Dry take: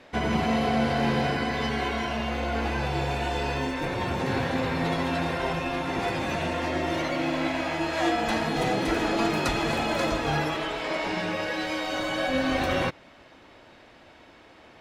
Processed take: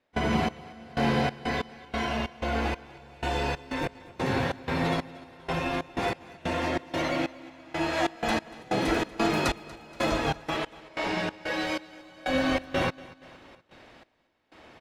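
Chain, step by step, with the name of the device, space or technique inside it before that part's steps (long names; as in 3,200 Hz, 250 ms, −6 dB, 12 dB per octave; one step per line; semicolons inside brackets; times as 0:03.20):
trance gate with a delay (gate pattern ".xx...xx.x..xx" 93 BPM −24 dB; repeating echo 237 ms, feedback 52%, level −20.5 dB)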